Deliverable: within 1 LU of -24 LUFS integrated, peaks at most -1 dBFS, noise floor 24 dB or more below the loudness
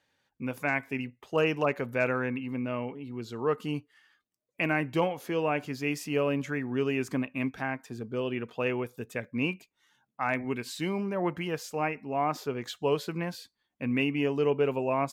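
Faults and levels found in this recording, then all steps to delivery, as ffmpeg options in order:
loudness -31.0 LUFS; peak -15.0 dBFS; loudness target -24.0 LUFS
-> -af "volume=7dB"

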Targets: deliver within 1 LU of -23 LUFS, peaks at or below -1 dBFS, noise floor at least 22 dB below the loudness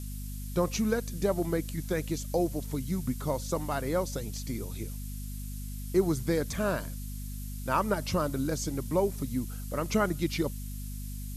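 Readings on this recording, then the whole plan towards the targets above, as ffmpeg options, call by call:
hum 50 Hz; harmonics up to 250 Hz; hum level -36 dBFS; noise floor -38 dBFS; noise floor target -54 dBFS; loudness -32.0 LUFS; peak -13.5 dBFS; loudness target -23.0 LUFS
-> -af "bandreject=f=50:t=h:w=4,bandreject=f=100:t=h:w=4,bandreject=f=150:t=h:w=4,bandreject=f=200:t=h:w=4,bandreject=f=250:t=h:w=4"
-af "afftdn=nr=16:nf=-38"
-af "volume=9dB"

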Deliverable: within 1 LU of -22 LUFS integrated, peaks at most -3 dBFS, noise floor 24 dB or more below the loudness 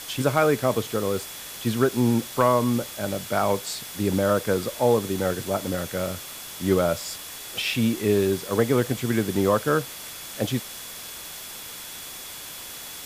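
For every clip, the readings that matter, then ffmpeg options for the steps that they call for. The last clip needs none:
steady tone 3400 Hz; tone level -46 dBFS; noise floor -39 dBFS; noise floor target -49 dBFS; loudness -25.0 LUFS; peak -7.5 dBFS; loudness target -22.0 LUFS
-> -af "bandreject=f=3.4k:w=30"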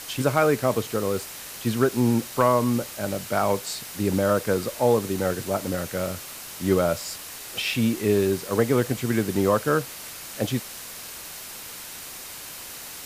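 steady tone none; noise floor -39 dBFS; noise floor target -49 dBFS
-> -af "afftdn=nr=10:nf=-39"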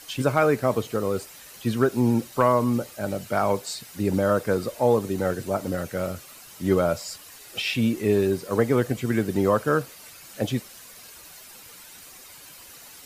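noise floor -46 dBFS; noise floor target -49 dBFS
-> -af "afftdn=nr=6:nf=-46"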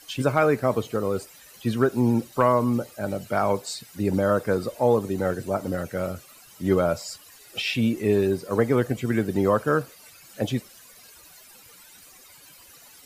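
noise floor -50 dBFS; loudness -24.5 LUFS; peak -7.5 dBFS; loudness target -22.0 LUFS
-> -af "volume=2.5dB"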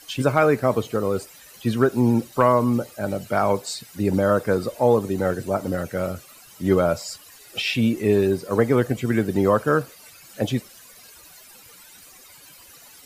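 loudness -22.0 LUFS; peak -5.0 dBFS; noise floor -48 dBFS

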